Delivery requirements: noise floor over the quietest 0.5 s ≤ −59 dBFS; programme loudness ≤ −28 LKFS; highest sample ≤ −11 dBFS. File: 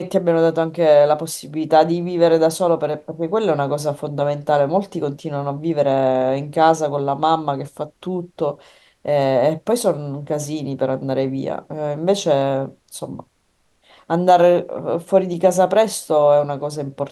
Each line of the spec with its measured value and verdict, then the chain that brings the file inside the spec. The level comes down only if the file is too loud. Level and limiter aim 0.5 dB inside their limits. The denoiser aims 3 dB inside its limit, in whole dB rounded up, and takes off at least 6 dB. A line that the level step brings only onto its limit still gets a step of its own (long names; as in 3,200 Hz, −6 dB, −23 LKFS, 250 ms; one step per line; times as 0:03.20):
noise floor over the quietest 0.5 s −63 dBFS: in spec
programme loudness −19.0 LKFS: out of spec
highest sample −2.5 dBFS: out of spec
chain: level −9.5 dB